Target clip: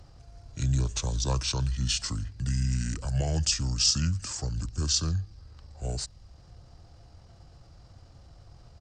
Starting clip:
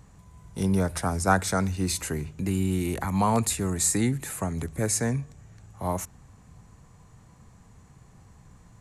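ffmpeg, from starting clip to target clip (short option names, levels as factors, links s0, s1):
-filter_complex "[0:a]acrossover=split=200|3000[s0][s1][s2];[s1]acompressor=threshold=0.00112:ratio=1.5[s3];[s0][s3][s2]amix=inputs=3:normalize=0,asetrate=30296,aresample=44100,atempo=1.45565,volume=1.19"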